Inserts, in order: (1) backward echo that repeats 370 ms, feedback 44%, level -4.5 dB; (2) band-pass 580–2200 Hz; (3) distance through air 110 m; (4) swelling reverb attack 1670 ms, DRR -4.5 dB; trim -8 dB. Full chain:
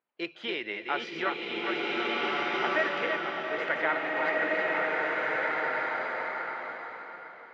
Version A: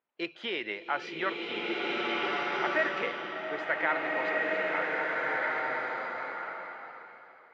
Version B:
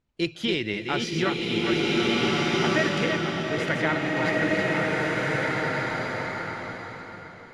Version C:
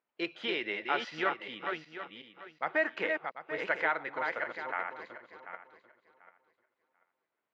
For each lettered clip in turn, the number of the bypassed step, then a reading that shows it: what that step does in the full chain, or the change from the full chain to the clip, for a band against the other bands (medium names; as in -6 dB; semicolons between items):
1, loudness change -1.5 LU; 2, 125 Hz band +18.0 dB; 4, momentary loudness spread change +7 LU